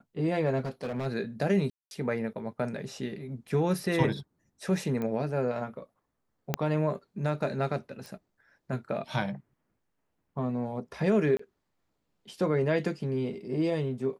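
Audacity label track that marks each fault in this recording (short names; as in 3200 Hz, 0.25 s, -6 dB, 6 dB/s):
0.600000	1.070000	clipped -29 dBFS
1.700000	1.910000	gap 0.211 s
5.020000	5.020000	pop -22 dBFS
6.540000	6.540000	pop -11 dBFS
8.060000	8.060000	pop
11.370000	11.390000	gap 24 ms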